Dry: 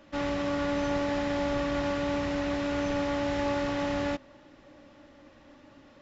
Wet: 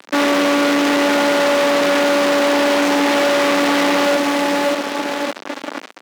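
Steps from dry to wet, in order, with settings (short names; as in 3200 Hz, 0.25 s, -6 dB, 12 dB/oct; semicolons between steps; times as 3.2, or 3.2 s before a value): in parallel at -9 dB: bit-crush 5-bit; on the sum: feedback echo 0.579 s, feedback 33%, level -13 dB; fuzz box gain 53 dB, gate -48 dBFS; HPF 240 Hz 24 dB/oct; high shelf 6800 Hz -8.5 dB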